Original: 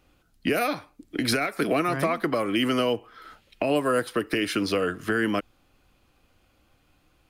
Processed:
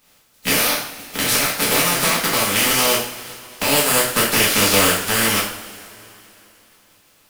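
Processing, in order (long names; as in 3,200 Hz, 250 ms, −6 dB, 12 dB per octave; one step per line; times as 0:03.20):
compressing power law on the bin magnitudes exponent 0.27
0:04.16–0:05.08: leveller curve on the samples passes 1
coupled-rooms reverb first 0.51 s, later 3.2 s, from −20 dB, DRR −6 dB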